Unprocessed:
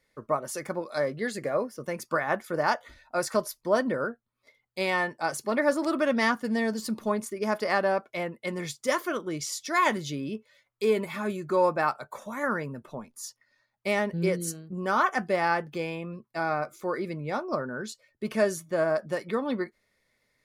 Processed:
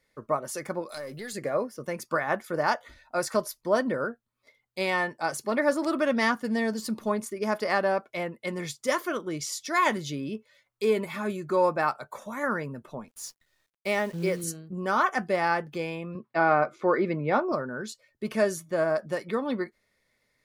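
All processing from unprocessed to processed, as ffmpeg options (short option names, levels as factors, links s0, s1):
-filter_complex "[0:a]asettb=1/sr,asplit=3[s0][s1][s2];[s0]atrim=end=0.894[s3];[s1]atrim=start=0.89:end=1.33,asetpts=PTS-STARTPTS,afade=t=in:d=0.004:c=qsin,afade=t=out:st=0.436:d=0.004:c=qsin,aemphasis=mode=production:type=75fm,acompressor=threshold=0.0224:ratio=5:attack=3.2:release=140:knee=1:detection=peak,aeval=exprs='(tanh(20*val(0)+0.2)-tanh(0.2))/20':c=same[s4];[s2]atrim=start=1.326[s5];[s3][s4]acrossfade=d=0.004:c1=hsin:c2=qsin[s6];[s6][s5]acrossfade=d=0.004:c1=qsin:c2=hsin,asettb=1/sr,asplit=3[s7][s8][s9];[s7]atrim=end=13.084[s10];[s8]atrim=start=13.08:end=14.44,asetpts=PTS-STARTPTS,afade=t=in:d=0.004:c=qsin,afade=t=out:st=1.356:d=0.004:c=qsin,highpass=f=180:p=1,acrusher=bits=9:dc=4:mix=0:aa=0.000001[s11];[s9]atrim=start=14.436[s12];[s10][s11]acrossfade=d=0.004:c1=hsin:c2=qsin[s13];[s13][s12]acrossfade=d=0.004:c1=qsin:c2=hsin,asettb=1/sr,asplit=3[s14][s15][s16];[s14]atrim=end=16.154[s17];[s15]atrim=start=16.15:end=17.52,asetpts=PTS-STARTPTS,afade=t=in:d=0.004:c=qsin,afade=t=out:st=1.366:d=0.004:c=qsin,highpass=160,lowpass=2800,acontrast=75[s18];[s16]atrim=start=17.516[s19];[s17][s18]acrossfade=d=0.004:c1=hsin:c2=qsin[s20];[s20][s19]acrossfade=d=0.004:c1=qsin:c2=hsin"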